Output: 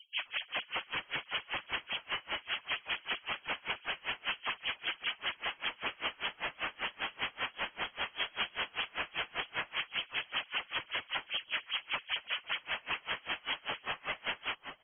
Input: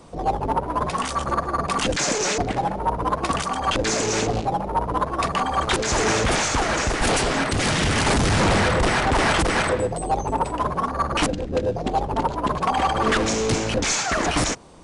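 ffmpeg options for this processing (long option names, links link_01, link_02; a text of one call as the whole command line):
ffmpeg -i in.wav -filter_complex "[0:a]alimiter=limit=-20dB:level=0:latency=1:release=36,aresample=11025,aeval=exprs='0.0282*(abs(mod(val(0)/0.0282+3,4)-2)-1)':channel_layout=same,aresample=44100,highpass=frequency=130:poles=1,afftfilt=real='re*gte(hypot(re,im),0.0141)':imag='im*gte(hypot(re,im),0.0141)':win_size=1024:overlap=0.75,lowpass=frequency=2900:width_type=q:width=0.5098,lowpass=frequency=2900:width_type=q:width=0.6013,lowpass=frequency=2900:width_type=q:width=0.9,lowpass=frequency=2900:width_type=q:width=2.563,afreqshift=-3400,bandreject=frequency=60:width_type=h:width=6,bandreject=frequency=120:width_type=h:width=6,bandreject=frequency=180:width_type=h:width=6,bandreject=frequency=240:width_type=h:width=6,bandreject=frequency=300:width_type=h:width=6,bandreject=frequency=360:width_type=h:width=6,bandreject=frequency=420:width_type=h:width=6,bandreject=frequency=480:width_type=h:width=6,bandreject=frequency=540:width_type=h:width=6,asplit=2[link_01][link_02];[link_02]adelay=638,lowpass=frequency=1200:poles=1,volume=-4.5dB,asplit=2[link_03][link_04];[link_04]adelay=638,lowpass=frequency=1200:poles=1,volume=0.16,asplit=2[link_05][link_06];[link_06]adelay=638,lowpass=frequency=1200:poles=1,volume=0.16[link_07];[link_01][link_03][link_05][link_07]amix=inputs=4:normalize=0,aeval=exprs='val(0)*pow(10,-30*(0.5-0.5*cos(2*PI*5.1*n/s))/20)':channel_layout=same,volume=5dB" out.wav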